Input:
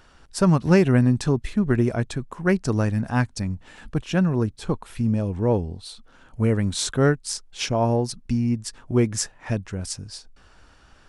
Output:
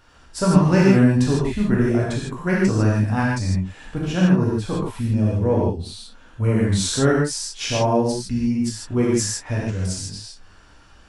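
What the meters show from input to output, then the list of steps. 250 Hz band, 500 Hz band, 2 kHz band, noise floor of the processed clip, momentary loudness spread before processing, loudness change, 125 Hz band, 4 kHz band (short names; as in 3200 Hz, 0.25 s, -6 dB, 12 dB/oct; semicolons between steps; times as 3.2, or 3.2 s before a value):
+3.5 dB, +2.5 dB, +3.0 dB, -49 dBFS, 12 LU, +3.0 dB, +3.0 dB, +3.5 dB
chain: non-linear reverb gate 0.18 s flat, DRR -5.5 dB; gain -3.5 dB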